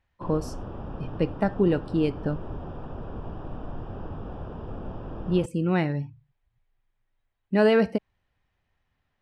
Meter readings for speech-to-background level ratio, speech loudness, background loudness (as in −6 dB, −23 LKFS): 13.0 dB, −26.0 LKFS, −39.0 LKFS